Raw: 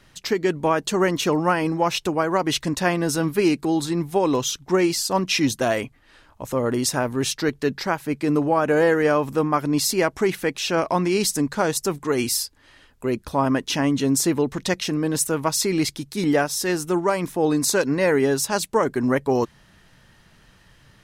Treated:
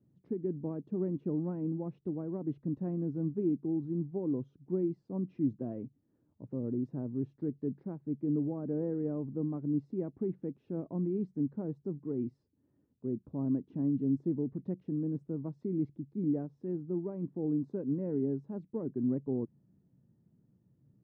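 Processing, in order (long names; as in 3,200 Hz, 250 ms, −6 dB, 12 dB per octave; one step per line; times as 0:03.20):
flat-topped band-pass 190 Hz, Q 0.87
level −8 dB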